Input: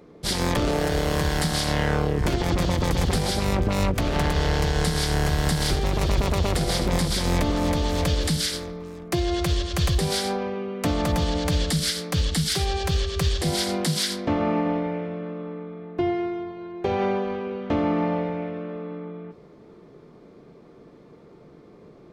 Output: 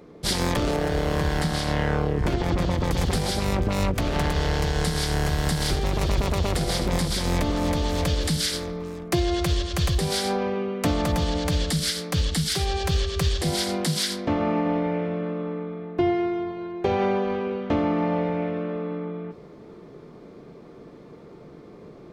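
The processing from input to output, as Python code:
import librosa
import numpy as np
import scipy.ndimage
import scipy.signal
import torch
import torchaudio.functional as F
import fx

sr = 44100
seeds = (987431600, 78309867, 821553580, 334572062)

y = fx.high_shelf(x, sr, hz=4000.0, db=-8.5, at=(0.76, 2.91))
y = fx.rider(y, sr, range_db=4, speed_s=0.5)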